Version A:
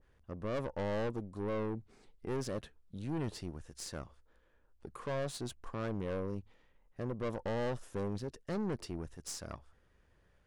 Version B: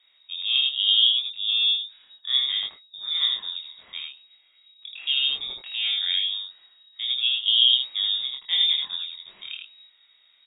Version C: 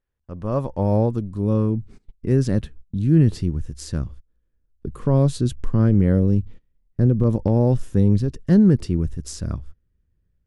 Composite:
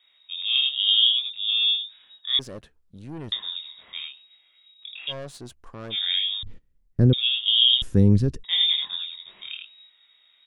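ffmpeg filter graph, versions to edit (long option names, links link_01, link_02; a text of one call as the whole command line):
ffmpeg -i take0.wav -i take1.wav -i take2.wav -filter_complex "[0:a]asplit=2[link_01][link_02];[2:a]asplit=2[link_03][link_04];[1:a]asplit=5[link_05][link_06][link_07][link_08][link_09];[link_05]atrim=end=2.392[link_10];[link_01]atrim=start=2.388:end=3.322[link_11];[link_06]atrim=start=3.318:end=5.13[link_12];[link_02]atrim=start=5.07:end=5.96[link_13];[link_07]atrim=start=5.9:end=6.432[link_14];[link_03]atrim=start=6.428:end=7.132[link_15];[link_08]atrim=start=7.128:end=7.822[link_16];[link_04]atrim=start=7.818:end=8.442[link_17];[link_09]atrim=start=8.438[link_18];[link_10][link_11]acrossfade=duration=0.004:curve1=hsin:curve2=hsin[link_19];[link_19][link_12]acrossfade=duration=0.004:curve1=hsin:curve2=hsin[link_20];[link_20][link_13]acrossfade=duration=0.06:curve1=tri:curve2=tri[link_21];[link_21][link_14]acrossfade=duration=0.06:curve1=tri:curve2=tri[link_22];[link_22][link_15]acrossfade=duration=0.004:curve1=hsin:curve2=hsin[link_23];[link_23][link_16]acrossfade=duration=0.004:curve1=hsin:curve2=hsin[link_24];[link_24][link_17]acrossfade=duration=0.004:curve1=hsin:curve2=hsin[link_25];[link_25][link_18]acrossfade=duration=0.004:curve1=hsin:curve2=hsin" out.wav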